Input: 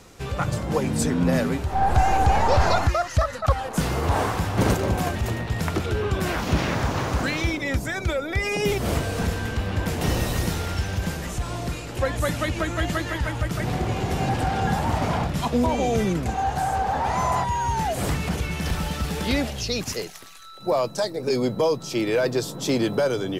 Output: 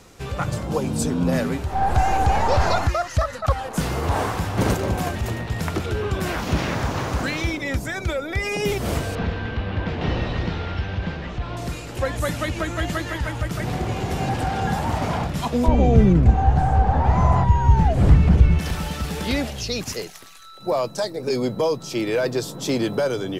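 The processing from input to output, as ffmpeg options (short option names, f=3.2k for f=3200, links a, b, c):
-filter_complex "[0:a]asettb=1/sr,asplit=3[a][b][c];[a]atrim=end=0.674[d];[b]atrim=start=0.67:end=1.32,asetpts=PTS-STARTPTS,afade=t=in:d=0.004:c=qsin,afade=t=out:st=0.646:d=0.004:c=qsin,equalizer=f=1.9k:t=o:w=0.5:g=-9.5[e];[c]atrim=start=1.316[f];[d][e]acrossfade=d=0.004:c1=hsin:c2=qsin[g];[g][f]acrossfade=d=0.004:c1=qsin:c2=hsin,asettb=1/sr,asplit=3[h][i][j];[h]atrim=end=9.154[k];[i]atrim=start=9.15:end=11.57,asetpts=PTS-STARTPTS,afade=t=in:d=0.004:c=qsin,afade=t=out:st=2.416:d=0.004:c=qsin,lowpass=f=3.9k:w=0.5412,lowpass=f=3.9k:w=1.3066[l];[j]atrim=start=11.566[m];[k][l]acrossfade=d=0.004:c1=hsin:c2=qsin[n];[n][m]acrossfade=d=0.004:c1=qsin:c2=hsin,asettb=1/sr,asplit=3[o][p][q];[o]atrim=end=15.684[r];[p]atrim=start=15.68:end=18.59,asetpts=PTS-STARTPTS,afade=t=in:d=0.004:c=qsin,afade=t=out:st=2.906:d=0.004:c=qsin,aemphasis=mode=reproduction:type=riaa[s];[q]atrim=start=18.586[t];[r][s]acrossfade=d=0.004:c1=hsin:c2=qsin[u];[u][t]acrossfade=d=0.004:c1=qsin:c2=hsin"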